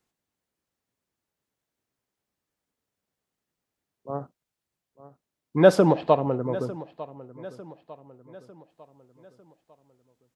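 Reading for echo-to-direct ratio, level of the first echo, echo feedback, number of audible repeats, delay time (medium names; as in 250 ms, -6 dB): -16.5 dB, -17.5 dB, 46%, 3, 900 ms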